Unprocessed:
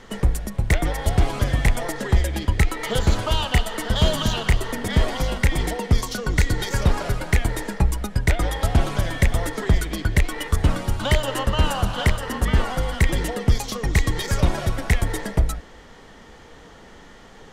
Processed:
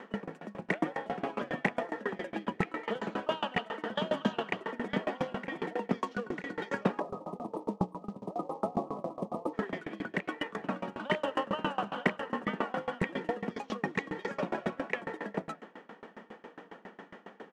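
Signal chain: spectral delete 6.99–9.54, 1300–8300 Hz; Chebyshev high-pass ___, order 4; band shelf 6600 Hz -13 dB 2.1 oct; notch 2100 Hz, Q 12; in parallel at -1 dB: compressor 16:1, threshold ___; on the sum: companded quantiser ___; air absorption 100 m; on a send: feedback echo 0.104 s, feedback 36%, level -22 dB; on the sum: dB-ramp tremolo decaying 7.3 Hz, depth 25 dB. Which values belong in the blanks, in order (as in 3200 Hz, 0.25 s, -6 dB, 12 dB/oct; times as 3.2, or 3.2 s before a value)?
190 Hz, -37 dBFS, 6-bit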